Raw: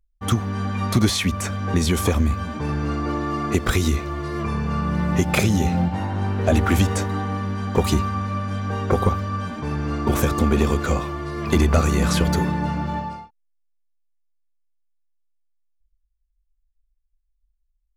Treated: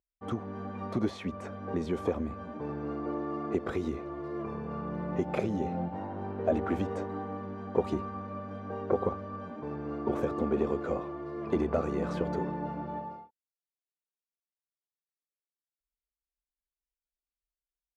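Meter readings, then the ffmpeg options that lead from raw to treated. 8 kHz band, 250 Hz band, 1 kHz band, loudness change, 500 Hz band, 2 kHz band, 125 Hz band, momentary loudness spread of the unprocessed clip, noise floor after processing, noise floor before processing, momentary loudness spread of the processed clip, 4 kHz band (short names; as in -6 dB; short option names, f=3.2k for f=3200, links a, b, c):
under -25 dB, -10.5 dB, -11.0 dB, -11.5 dB, -5.5 dB, -17.0 dB, -18.0 dB, 8 LU, under -85 dBFS, -70 dBFS, 9 LU, under -20 dB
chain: -af "bandpass=f=480:t=q:w=1.1:csg=0,volume=-5dB"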